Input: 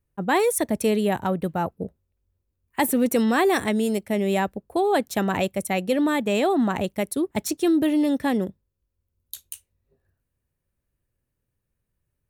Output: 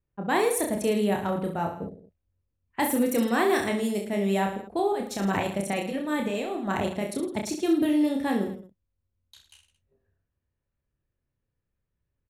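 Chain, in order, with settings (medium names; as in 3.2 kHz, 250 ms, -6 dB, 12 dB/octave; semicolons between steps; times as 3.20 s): level-controlled noise filter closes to 3 kHz, open at -19 dBFS; 4.92–7.23 s: compressor with a negative ratio -24 dBFS, ratio -0.5; reverse bouncing-ball echo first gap 30 ms, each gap 1.2×, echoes 5; trim -5 dB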